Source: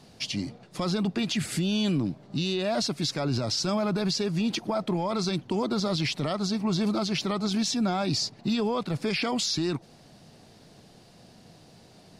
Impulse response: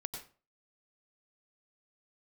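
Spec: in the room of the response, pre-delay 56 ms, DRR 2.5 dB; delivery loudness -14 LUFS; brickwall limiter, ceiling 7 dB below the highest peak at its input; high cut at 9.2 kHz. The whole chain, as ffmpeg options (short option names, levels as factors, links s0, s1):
-filter_complex "[0:a]lowpass=9200,alimiter=level_in=1.19:limit=0.0631:level=0:latency=1,volume=0.841,asplit=2[s0][s1];[1:a]atrim=start_sample=2205,adelay=56[s2];[s1][s2]afir=irnorm=-1:irlink=0,volume=0.841[s3];[s0][s3]amix=inputs=2:normalize=0,volume=7.08"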